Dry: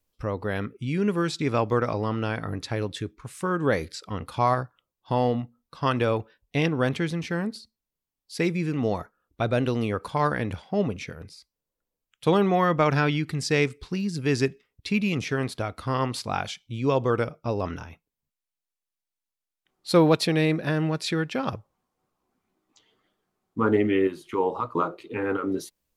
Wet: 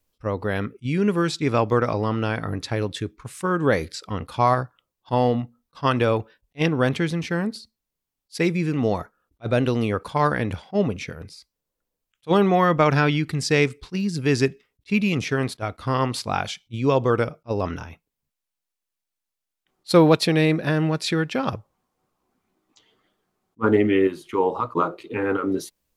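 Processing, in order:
level that may rise only so fast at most 590 dB per second
level +3.5 dB

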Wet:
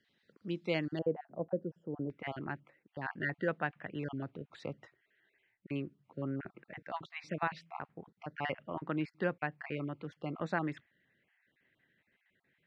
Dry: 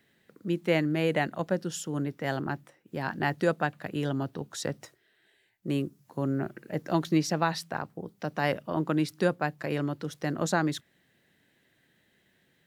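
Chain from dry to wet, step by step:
time-frequency cells dropped at random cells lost 26%
low-pass with resonance 4,400 Hz, resonance Q 2, from 0:00.99 540 Hz, from 0:02.10 2,300 Hz
level −8.5 dB

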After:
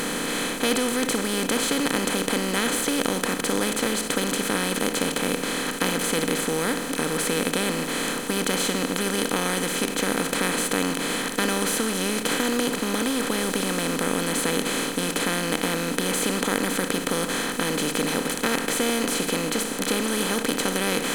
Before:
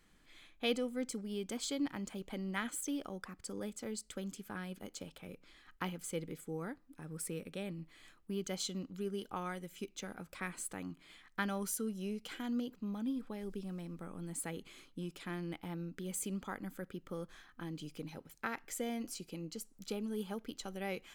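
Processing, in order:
compressor on every frequency bin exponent 0.2
level +5.5 dB

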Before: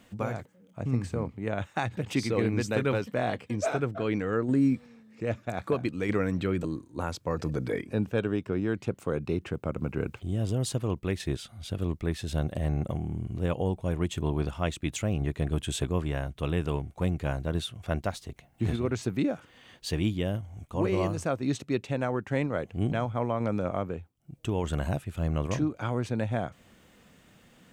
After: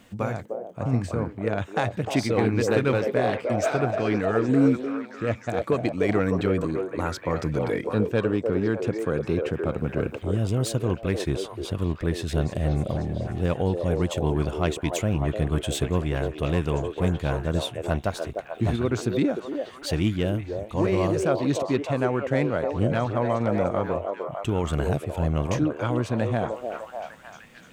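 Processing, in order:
phase distortion by the signal itself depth 0.056 ms
echo through a band-pass that steps 302 ms, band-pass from 490 Hz, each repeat 0.7 octaves, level −1 dB
level +4 dB

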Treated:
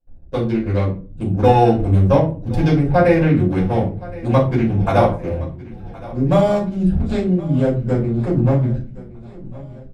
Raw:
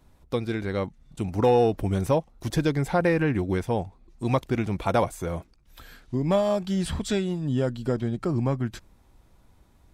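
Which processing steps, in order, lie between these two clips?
adaptive Wiener filter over 41 samples
noise gate with hold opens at −48 dBFS
on a send: repeating echo 1,068 ms, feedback 52%, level −19.5 dB
on the sum: rectangular room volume 200 cubic metres, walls furnished, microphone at 5.2 metres
level −2.5 dB

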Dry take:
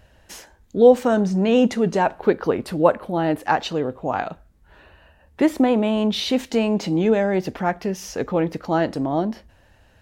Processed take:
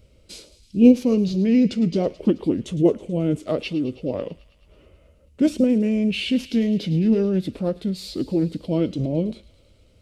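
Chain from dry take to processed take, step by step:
formants moved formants −5 semitones
flat-topped bell 1,200 Hz −14.5 dB
delay with a high-pass on its return 108 ms, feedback 74%, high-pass 2,000 Hz, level −15 dB

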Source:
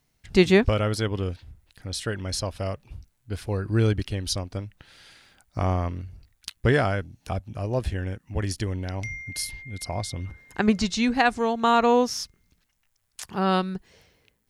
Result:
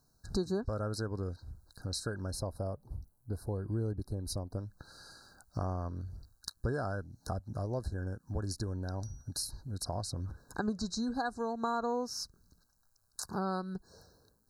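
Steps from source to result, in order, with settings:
0:02.31–0:04.58: flat-topped bell 3,100 Hz −10 dB 2.9 octaves
downward compressor 3 to 1, threshold −35 dBFS, peak gain reduction 17 dB
linear-phase brick-wall band-stop 1,700–3,800 Hz

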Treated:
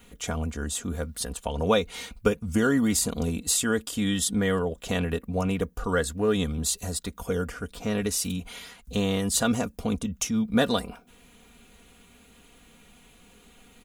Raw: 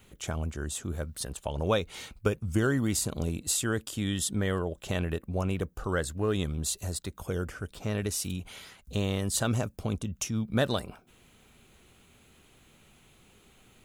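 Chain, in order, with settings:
comb filter 4.2 ms, depth 67%
level +3 dB

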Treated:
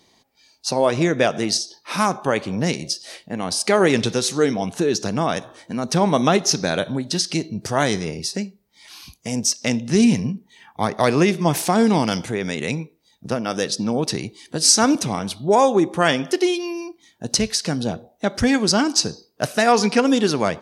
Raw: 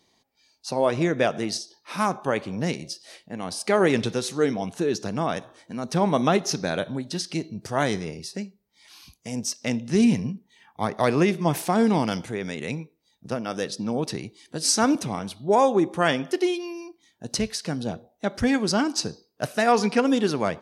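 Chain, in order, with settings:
dynamic equaliser 6,200 Hz, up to +5 dB, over −43 dBFS, Q 0.71
in parallel at −1 dB: downward compressor, threshold −30 dBFS, peak gain reduction 15.5 dB
on the sum: level +2 dB

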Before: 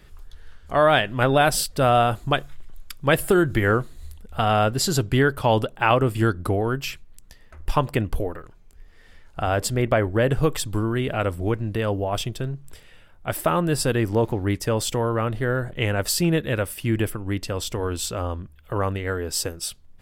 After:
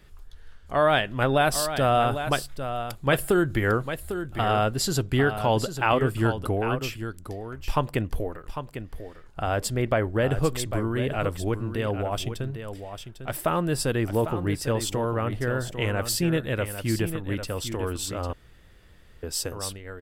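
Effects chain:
0:12.50–0:13.34: gain on one half-wave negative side −3 dB
single-tap delay 800 ms −9.5 dB
0:18.33–0:19.23: fill with room tone
level −3.5 dB

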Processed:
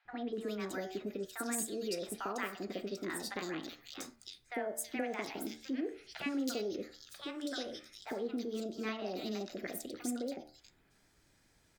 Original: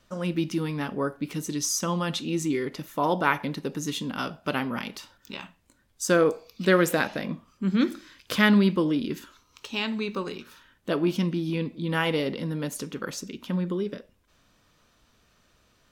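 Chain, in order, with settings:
hum removal 55.68 Hz, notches 29
downward compressor 3 to 1, threshold −31 dBFS, peak gain reduction 12 dB
three-band delay without the direct sound mids, lows, highs 70/440 ms, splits 610/2,400 Hz
wrong playback speed 33 rpm record played at 45 rpm
level −4.5 dB

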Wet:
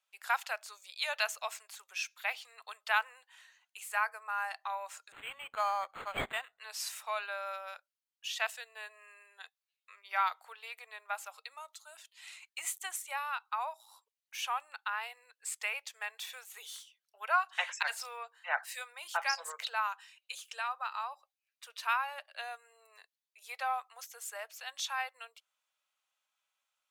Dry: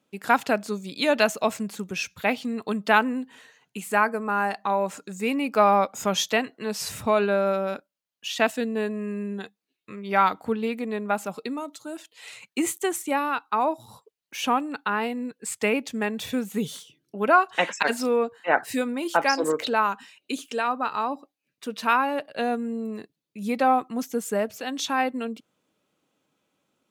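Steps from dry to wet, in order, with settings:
Bessel high-pass filter 1,200 Hz, order 8
0:05.12–0:06.59: linearly interpolated sample-rate reduction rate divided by 8×
level −6.5 dB

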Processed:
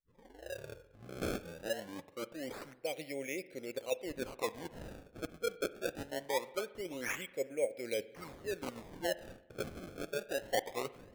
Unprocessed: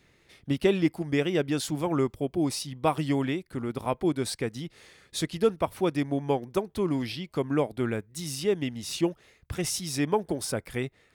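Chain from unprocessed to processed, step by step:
turntable start at the beginning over 2.63 s
reversed playback
downward compressor 16 to 1, threshold −38 dBFS, peak gain reduction 22 dB
reversed playback
pair of resonant band-passes 1,100 Hz, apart 2.1 octaves
sample-and-hold swept by an LFO 26×, swing 160% 0.23 Hz
spring reverb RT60 1.1 s, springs 43 ms, chirp 80 ms, DRR 16 dB
one half of a high-frequency compander decoder only
level +15.5 dB

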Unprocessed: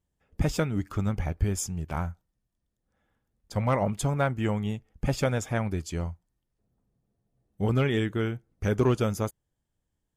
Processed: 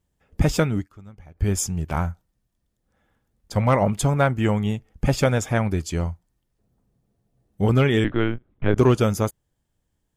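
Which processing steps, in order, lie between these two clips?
0:00.73–0:01.49: duck −22.5 dB, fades 0.15 s
0:08.04–0:08.77: linear-prediction vocoder at 8 kHz pitch kept
level +6.5 dB

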